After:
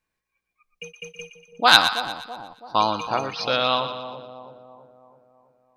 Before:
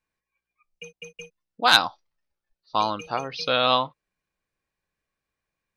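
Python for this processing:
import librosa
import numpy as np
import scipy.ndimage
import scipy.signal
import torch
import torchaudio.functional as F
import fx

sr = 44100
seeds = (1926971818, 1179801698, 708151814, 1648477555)

p1 = fx.rider(x, sr, range_db=3, speed_s=0.5)
y = p1 + fx.echo_split(p1, sr, split_hz=890.0, low_ms=329, high_ms=119, feedback_pct=52, wet_db=-10.0, dry=0)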